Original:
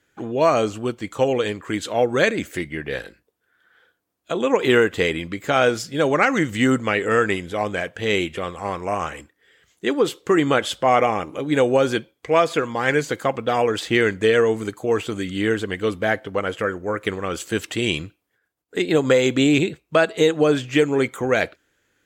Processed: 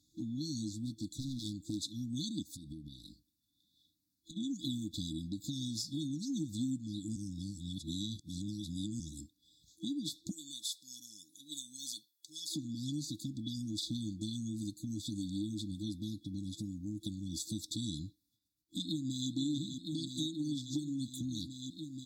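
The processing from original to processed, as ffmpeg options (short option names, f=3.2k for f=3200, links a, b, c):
-filter_complex "[0:a]asettb=1/sr,asplit=3[a][b][c];[a]atrim=end=0.694[d];[b]atrim=start=0.69:end=1.78,asetpts=PTS-STARTPTS,afade=t=in:d=0.004:c=qsin,afade=t=out:st=1.086:d=0.004:c=qsin,volume=20.5dB,asoftclip=hard,volume=-20.5dB[e];[c]atrim=start=1.776[f];[d][e]acrossfade=d=0.004:c1=hsin:c2=qsin[g];[g][f]acrossfade=d=0.004:c1=qsin:c2=hsin,asplit=3[h][i][j];[h]afade=t=out:st=2.42:d=0.02[k];[i]acompressor=threshold=-36dB:ratio=10:attack=3.2:release=140:knee=1:detection=peak,afade=t=in:st=2.42:d=0.02,afade=t=out:st=4.36:d=0.02[l];[j]afade=t=in:st=4.36:d=0.02[m];[k][l][m]amix=inputs=3:normalize=0,asettb=1/sr,asplit=3[n][o][p];[n]atrim=end=10.314[q];[o]atrim=start=10.31:end=12.55,asetpts=PTS-STARTPTS,afade=t=in:d=0.004:c=qsin,afade=t=out:st=2.236:d=0.004:c=qsin,aderivative[r];[p]atrim=start=12.546[s];[q][r]acrossfade=d=0.004:c1=hsin:c2=qsin[t];[t][s]acrossfade=d=0.004:c1=qsin:c2=hsin,asplit=2[u][v];[v]afade=t=in:st=18.82:d=0.01,afade=t=out:st=19.3:d=0.01,aecho=0:1:480|960|1440|1920|2400|2880|3360|3840|4320|4800|5280|5760:0.375837|0.30067|0.240536|0.192429|0.153943|0.123154|0.0985235|0.0788188|0.0630551|0.050444|0.0403552|0.0322842[w];[u][w]amix=inputs=2:normalize=0,asplit=3[x][y][z];[x]atrim=end=7.162[aa];[y]atrim=start=7.158:end=9.002,asetpts=PTS-STARTPTS,areverse[ab];[z]atrim=start=8.998[ac];[aa][ab]acrossfade=d=0.004:c1=hsin:c2=hsin[ad];[ad][ac]acrossfade=d=0.004:c1=hsin:c2=hsin,afftfilt=real='re*(1-between(b*sr/4096,330,3400))':imag='im*(1-between(b*sr/4096,330,3400))':win_size=4096:overlap=0.75,equalizer=f=4.4k:w=1.5:g=6,acompressor=threshold=-35dB:ratio=3,volume=-3dB"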